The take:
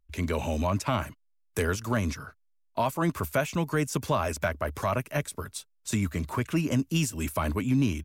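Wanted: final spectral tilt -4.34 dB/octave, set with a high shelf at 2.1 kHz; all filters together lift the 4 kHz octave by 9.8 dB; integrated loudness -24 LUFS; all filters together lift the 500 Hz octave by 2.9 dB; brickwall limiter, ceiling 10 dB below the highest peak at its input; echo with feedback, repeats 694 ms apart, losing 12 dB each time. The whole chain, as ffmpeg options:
-af "equalizer=f=500:t=o:g=3,highshelf=f=2100:g=7.5,equalizer=f=4000:t=o:g=6,alimiter=limit=0.112:level=0:latency=1,aecho=1:1:694|1388|2082:0.251|0.0628|0.0157,volume=2"

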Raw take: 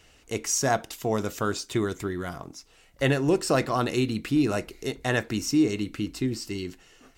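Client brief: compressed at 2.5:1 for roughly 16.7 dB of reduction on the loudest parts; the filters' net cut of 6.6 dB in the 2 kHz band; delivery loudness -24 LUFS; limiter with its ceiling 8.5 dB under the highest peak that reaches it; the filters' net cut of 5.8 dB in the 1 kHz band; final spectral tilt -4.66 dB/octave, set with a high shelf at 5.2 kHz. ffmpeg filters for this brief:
-af "equalizer=f=1000:t=o:g=-7.5,equalizer=f=2000:t=o:g=-5.5,highshelf=f=5200:g=-3.5,acompressor=threshold=0.00562:ratio=2.5,volume=12.6,alimiter=limit=0.2:level=0:latency=1"

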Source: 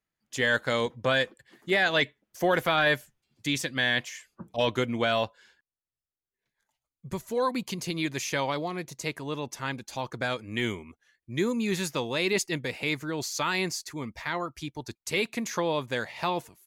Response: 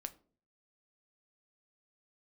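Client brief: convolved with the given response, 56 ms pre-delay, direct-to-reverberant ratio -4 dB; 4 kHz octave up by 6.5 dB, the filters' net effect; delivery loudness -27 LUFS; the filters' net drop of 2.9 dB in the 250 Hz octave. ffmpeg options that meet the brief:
-filter_complex "[0:a]equalizer=f=250:t=o:g=-4,equalizer=f=4000:t=o:g=8,asplit=2[s0][s1];[1:a]atrim=start_sample=2205,adelay=56[s2];[s1][s2]afir=irnorm=-1:irlink=0,volume=2.24[s3];[s0][s3]amix=inputs=2:normalize=0,volume=0.531"

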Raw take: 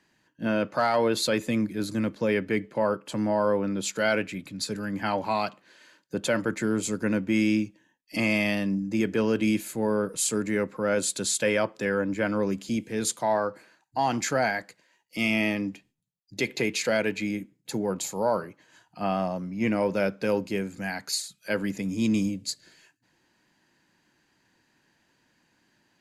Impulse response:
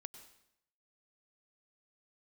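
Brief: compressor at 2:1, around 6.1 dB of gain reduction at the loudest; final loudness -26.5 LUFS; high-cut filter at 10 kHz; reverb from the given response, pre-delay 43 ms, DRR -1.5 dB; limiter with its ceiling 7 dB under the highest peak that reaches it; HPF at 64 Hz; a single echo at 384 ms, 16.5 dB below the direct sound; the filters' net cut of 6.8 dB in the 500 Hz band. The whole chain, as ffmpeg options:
-filter_complex "[0:a]highpass=64,lowpass=10000,equalizer=f=500:t=o:g=-8.5,acompressor=threshold=0.0224:ratio=2,alimiter=level_in=1.26:limit=0.0631:level=0:latency=1,volume=0.794,aecho=1:1:384:0.15,asplit=2[s0][s1];[1:a]atrim=start_sample=2205,adelay=43[s2];[s1][s2]afir=irnorm=-1:irlink=0,volume=2.24[s3];[s0][s3]amix=inputs=2:normalize=0,volume=2"

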